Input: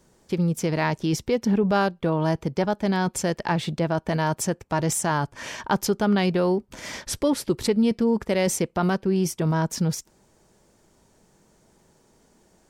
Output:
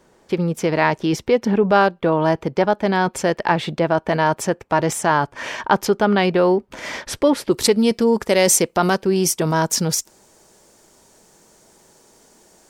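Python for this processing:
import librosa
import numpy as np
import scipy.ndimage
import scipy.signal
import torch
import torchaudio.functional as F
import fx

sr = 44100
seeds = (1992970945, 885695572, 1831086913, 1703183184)

y = fx.bass_treble(x, sr, bass_db=-9, treble_db=fx.steps((0.0, -9.0), (7.51, 5.0)))
y = y * librosa.db_to_amplitude(8.0)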